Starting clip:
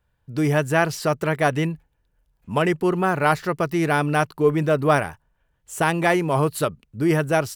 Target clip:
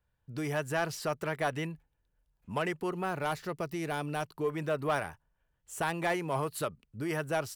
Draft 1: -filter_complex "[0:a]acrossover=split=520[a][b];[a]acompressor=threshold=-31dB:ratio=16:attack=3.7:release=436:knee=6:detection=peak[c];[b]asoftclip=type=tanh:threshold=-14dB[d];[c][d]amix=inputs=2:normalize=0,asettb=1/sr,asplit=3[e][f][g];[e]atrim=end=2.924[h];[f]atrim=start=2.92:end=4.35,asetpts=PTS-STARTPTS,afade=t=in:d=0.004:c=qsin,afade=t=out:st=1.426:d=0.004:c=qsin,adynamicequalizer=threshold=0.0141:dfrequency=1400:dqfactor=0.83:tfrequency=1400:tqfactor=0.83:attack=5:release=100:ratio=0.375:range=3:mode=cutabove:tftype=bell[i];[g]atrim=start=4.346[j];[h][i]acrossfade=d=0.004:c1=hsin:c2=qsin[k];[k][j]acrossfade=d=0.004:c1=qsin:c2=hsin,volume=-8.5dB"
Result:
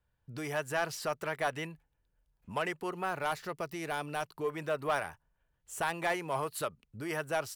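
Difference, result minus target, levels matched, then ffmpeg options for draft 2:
compressor: peak gain reduction +7 dB
-filter_complex "[0:a]acrossover=split=520[a][b];[a]acompressor=threshold=-23.5dB:ratio=16:attack=3.7:release=436:knee=6:detection=peak[c];[b]asoftclip=type=tanh:threshold=-14dB[d];[c][d]amix=inputs=2:normalize=0,asettb=1/sr,asplit=3[e][f][g];[e]atrim=end=2.924[h];[f]atrim=start=2.92:end=4.35,asetpts=PTS-STARTPTS,afade=t=in:d=0.004:c=qsin,afade=t=out:st=1.426:d=0.004:c=qsin,adynamicequalizer=threshold=0.0141:dfrequency=1400:dqfactor=0.83:tfrequency=1400:tqfactor=0.83:attack=5:release=100:ratio=0.375:range=3:mode=cutabove:tftype=bell[i];[g]atrim=start=4.346[j];[h][i]acrossfade=d=0.004:c1=hsin:c2=qsin[k];[k][j]acrossfade=d=0.004:c1=qsin:c2=hsin,volume=-8.5dB"

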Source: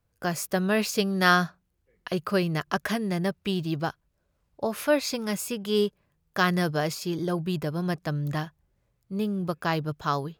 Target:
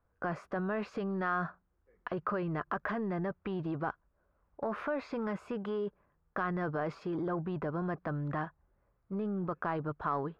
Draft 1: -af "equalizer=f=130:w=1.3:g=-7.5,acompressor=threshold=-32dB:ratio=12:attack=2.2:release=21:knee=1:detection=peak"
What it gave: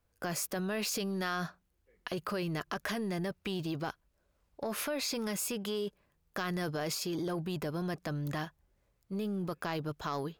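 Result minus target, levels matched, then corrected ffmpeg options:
1000 Hz band -4.0 dB
-af "equalizer=f=130:w=1.3:g=-7.5,acompressor=threshold=-32dB:ratio=12:attack=2.2:release=21:knee=1:detection=peak,lowpass=f=1.3k:t=q:w=1.7"

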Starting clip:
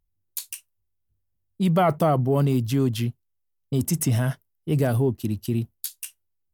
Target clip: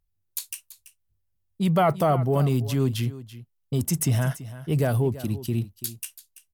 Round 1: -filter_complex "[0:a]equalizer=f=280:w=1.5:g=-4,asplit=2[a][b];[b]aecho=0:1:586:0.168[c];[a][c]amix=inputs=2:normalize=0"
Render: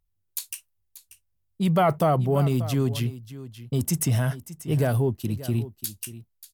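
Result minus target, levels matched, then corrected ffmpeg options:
echo 0.252 s late
-filter_complex "[0:a]equalizer=f=280:w=1.5:g=-4,asplit=2[a][b];[b]aecho=0:1:334:0.168[c];[a][c]amix=inputs=2:normalize=0"

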